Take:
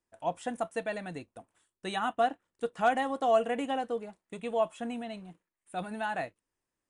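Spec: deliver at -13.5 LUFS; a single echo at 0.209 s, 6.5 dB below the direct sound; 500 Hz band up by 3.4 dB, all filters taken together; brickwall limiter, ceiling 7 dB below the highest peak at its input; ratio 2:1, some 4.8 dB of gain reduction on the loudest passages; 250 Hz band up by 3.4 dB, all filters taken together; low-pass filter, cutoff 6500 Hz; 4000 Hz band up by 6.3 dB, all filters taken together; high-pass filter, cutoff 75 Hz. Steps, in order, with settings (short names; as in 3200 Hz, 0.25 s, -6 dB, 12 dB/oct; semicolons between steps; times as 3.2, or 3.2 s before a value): HPF 75 Hz; LPF 6500 Hz; bell 250 Hz +3 dB; bell 500 Hz +4 dB; bell 4000 Hz +9 dB; compressor 2:1, threshold -27 dBFS; limiter -23.5 dBFS; echo 0.209 s -6.5 dB; gain +20.5 dB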